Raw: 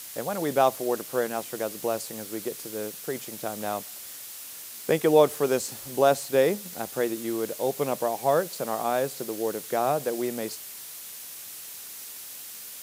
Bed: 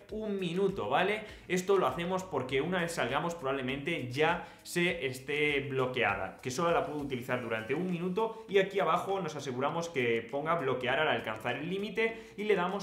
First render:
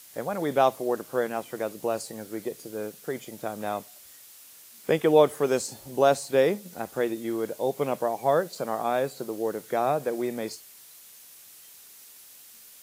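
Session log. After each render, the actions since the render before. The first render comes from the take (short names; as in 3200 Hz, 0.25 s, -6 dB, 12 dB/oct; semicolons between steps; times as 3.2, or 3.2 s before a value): noise print and reduce 9 dB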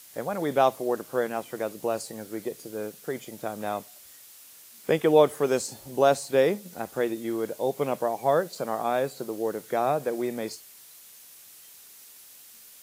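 nothing audible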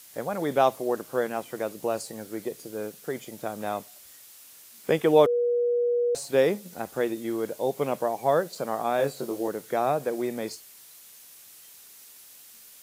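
5.26–6.15 bleep 481 Hz -21 dBFS; 8.97–9.48 doubler 21 ms -3 dB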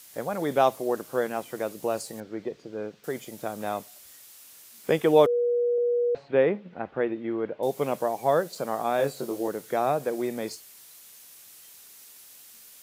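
2.2–3.04 air absorption 190 m; 5.78–7.63 LPF 2700 Hz 24 dB/oct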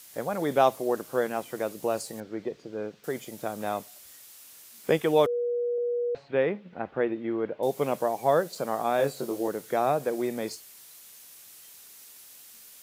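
4.97–6.73 bell 400 Hz -4 dB 3 oct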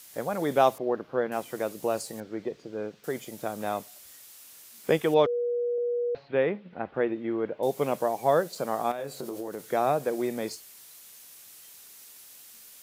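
0.78–1.32 air absorption 300 m; 5.14–6.94 LPF 5100 Hz 24 dB/oct; 8.91–9.6 compressor 12:1, threshold -30 dBFS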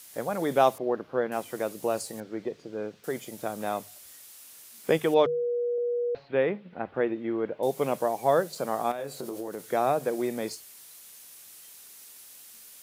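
bell 9800 Hz +2.5 dB 0.34 oct; notches 50/100/150 Hz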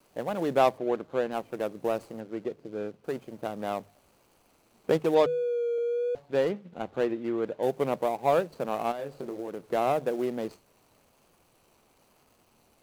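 median filter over 25 samples; vibrato 1 Hz 34 cents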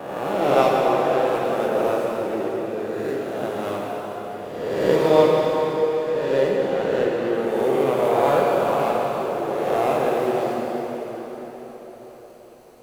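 spectral swells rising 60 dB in 1.43 s; plate-style reverb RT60 5 s, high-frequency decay 0.8×, DRR -3.5 dB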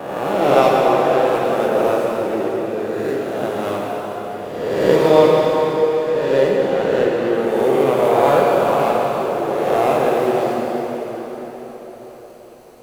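gain +4.5 dB; limiter -1 dBFS, peak gain reduction 1.5 dB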